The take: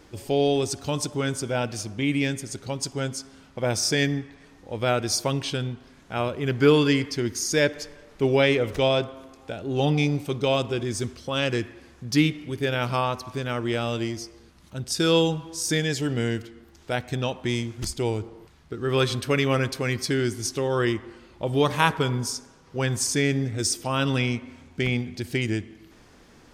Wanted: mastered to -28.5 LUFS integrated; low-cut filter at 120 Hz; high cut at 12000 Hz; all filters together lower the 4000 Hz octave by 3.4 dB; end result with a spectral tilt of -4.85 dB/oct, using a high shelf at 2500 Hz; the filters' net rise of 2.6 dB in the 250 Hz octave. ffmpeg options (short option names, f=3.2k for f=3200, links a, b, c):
-af "highpass=120,lowpass=12k,equalizer=f=250:t=o:g=3.5,highshelf=f=2.5k:g=3.5,equalizer=f=4k:t=o:g=-8,volume=-4dB"